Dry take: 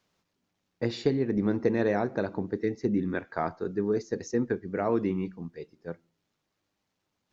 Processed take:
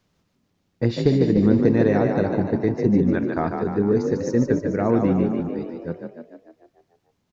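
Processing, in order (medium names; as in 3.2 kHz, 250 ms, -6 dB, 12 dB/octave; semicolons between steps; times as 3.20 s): bass shelf 240 Hz +12 dB; on a send: frequency-shifting echo 148 ms, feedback 58%, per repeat +37 Hz, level -5.5 dB; on the sum: trim +2.5 dB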